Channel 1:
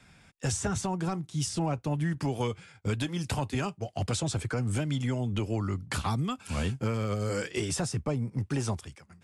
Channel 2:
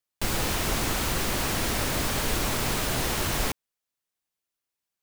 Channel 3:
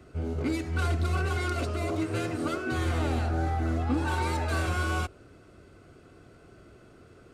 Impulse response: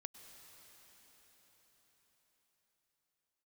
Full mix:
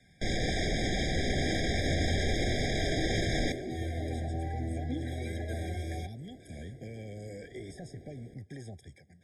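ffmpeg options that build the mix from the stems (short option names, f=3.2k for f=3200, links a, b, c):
-filter_complex "[0:a]alimiter=level_in=1dB:limit=-24dB:level=0:latency=1,volume=-1dB,acrossover=split=540|1800[a][b][c];[a]acompressor=threshold=-39dB:ratio=4[d];[b]acompressor=threshold=-46dB:ratio=4[e];[c]acompressor=threshold=-51dB:ratio=4[f];[d][e][f]amix=inputs=3:normalize=0,volume=-4.5dB,asplit=2[g][h];[h]volume=-13.5dB[i];[1:a]lowpass=f=6.3k:w=0.5412,lowpass=f=6.3k:w=1.3066,alimiter=level_in=1.5dB:limit=-24dB:level=0:latency=1:release=31,volume=-1.5dB,volume=2.5dB,asplit=2[j][k];[k]volume=-5dB[l];[2:a]acompressor=threshold=-44dB:ratio=1.5,adelay=1000,volume=0dB[m];[3:a]atrim=start_sample=2205[n];[i][l]amix=inputs=2:normalize=0[o];[o][n]afir=irnorm=-1:irlink=0[p];[g][j][m][p]amix=inputs=4:normalize=0,afftfilt=real='re*eq(mod(floor(b*sr/1024/790),2),0)':imag='im*eq(mod(floor(b*sr/1024/790),2),0)':win_size=1024:overlap=0.75"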